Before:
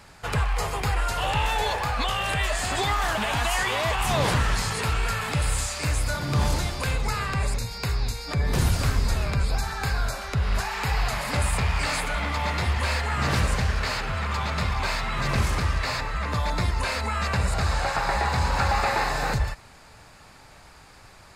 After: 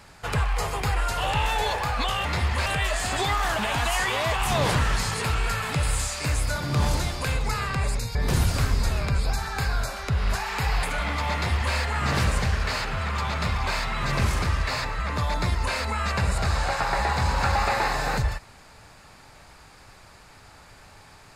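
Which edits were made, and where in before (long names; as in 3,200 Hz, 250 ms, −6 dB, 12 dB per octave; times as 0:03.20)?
0:07.74–0:08.40: remove
0:11.08–0:11.99: remove
0:12.50–0:12.91: duplicate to 0:02.25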